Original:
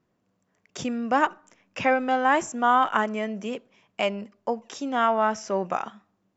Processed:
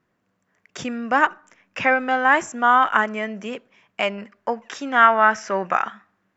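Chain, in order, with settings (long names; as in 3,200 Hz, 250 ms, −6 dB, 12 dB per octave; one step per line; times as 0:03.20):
parametric band 1,700 Hz +8.5 dB 1.3 octaves, from 0:04.18 +15 dB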